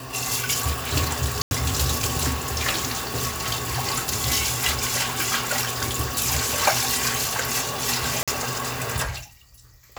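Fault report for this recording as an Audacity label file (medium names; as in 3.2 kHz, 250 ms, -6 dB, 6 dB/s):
1.420000	1.510000	dropout 91 ms
8.230000	8.280000	dropout 46 ms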